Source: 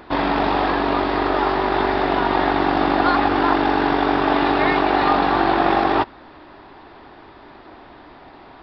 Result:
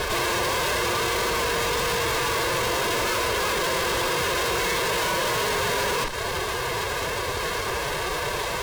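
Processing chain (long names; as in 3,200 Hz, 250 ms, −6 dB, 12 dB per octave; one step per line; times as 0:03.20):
lower of the sound and its delayed copy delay 2.3 ms
high-shelf EQ 3,300 Hz +8 dB
downward compressor 6 to 1, threshold −25 dBFS, peak gain reduction 11.5 dB
fuzz pedal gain 41 dB, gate −48 dBFS
tube saturation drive 30 dB, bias 0.35
phase-vocoder pitch shift with formants kept +3.5 semitones
level +6.5 dB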